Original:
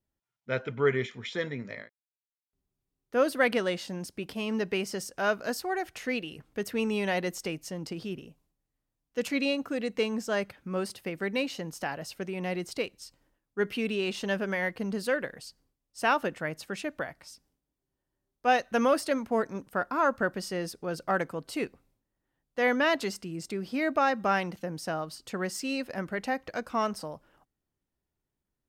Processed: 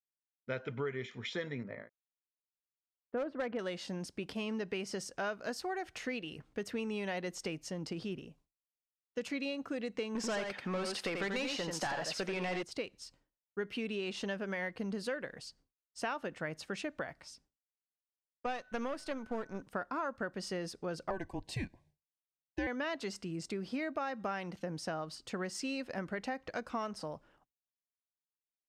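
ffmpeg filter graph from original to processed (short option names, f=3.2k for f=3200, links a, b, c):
-filter_complex "[0:a]asettb=1/sr,asplit=3[a][b][c];[a]atrim=end=1.634[d];[b]atrim=start=1.63:end=3.59,asetpts=PTS-STARTPTS,afade=t=in:d=0.004:c=qsin,afade=t=out:st=1.956:d=0.004:c=qsin,lowpass=1.4k,volume=20dB,asoftclip=hard,volume=-20dB[e];[c]atrim=start=3.586[f];[d][e]acrossfade=d=0.004:c1=hsin:c2=qsin[g];[g][f]acrossfade=d=0.004:c1=qsin:c2=hsin,asettb=1/sr,asplit=3[h][i][j];[h]atrim=end=10.154[k];[i]atrim=start=10.15:end=12.63,asetpts=PTS-STARTPTS,afade=t=in:d=0.004:c=qsin,afade=t=out:st=2.476:d=0.004:c=qsin,asplit=2[l][m];[m]highpass=f=720:p=1,volume=21dB,asoftclip=type=tanh:threshold=-18.5dB[n];[l][n]amix=inputs=2:normalize=0,lowpass=f=6.4k:p=1,volume=-6dB,aecho=1:1:87:0.531,atrim=end_sample=109368[o];[j]atrim=start=12.626[p];[k][o]acrossfade=d=0.004:c1=hsin:c2=qsin[q];[q][p]acrossfade=d=0.004:c1=qsin:c2=hsin,asettb=1/sr,asplit=3[r][s][t];[r]atrim=end=18.464[u];[s]atrim=start=18.46:end=19.62,asetpts=PTS-STARTPTS,afade=t=in:d=0.004:c=qsin,afade=t=out:st=1.156:d=0.004:c=qsin,aeval=exprs='if(lt(val(0),0),0.447*val(0),val(0))':c=same,aeval=exprs='val(0)+0.002*sin(2*PI*1500*n/s)':c=same[v];[t]atrim=start=19.616[w];[u][v]acrossfade=d=0.004:c1=hsin:c2=qsin[x];[x][w]acrossfade=d=0.004:c1=qsin:c2=hsin,asettb=1/sr,asplit=3[y][z][aa];[y]atrim=end=21.104[ab];[z]atrim=start=21.1:end=22.67,asetpts=PTS-STARTPTS,afade=t=in:d=0.004:c=qsin,afade=t=out:st=1.566:d=0.004:c=qsin,equalizer=f=870:w=4.4:g=7,afreqshift=-180,asuperstop=centerf=1300:order=20:qfactor=3.6[ac];[aa]atrim=start=22.666[ad];[ab][ac]acrossfade=d=0.004:c1=hsin:c2=qsin[ae];[ae][ad]acrossfade=d=0.004:c1=qsin:c2=hsin,lowpass=7.8k,agate=range=-33dB:threshold=-58dB:ratio=3:detection=peak,acompressor=threshold=-32dB:ratio=6,volume=-2dB"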